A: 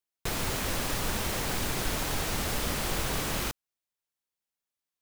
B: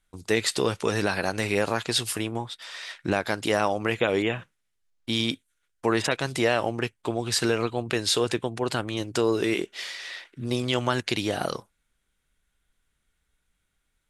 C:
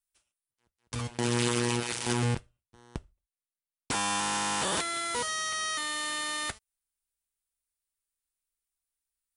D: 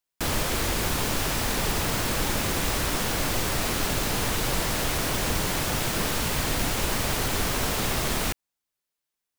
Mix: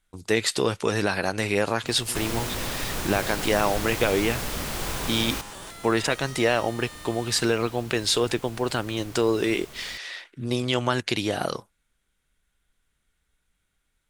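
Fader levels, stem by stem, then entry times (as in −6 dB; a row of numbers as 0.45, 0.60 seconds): 0.0, +1.0, −12.0, −19.5 decibels; 1.90, 0.00, 0.90, 1.65 seconds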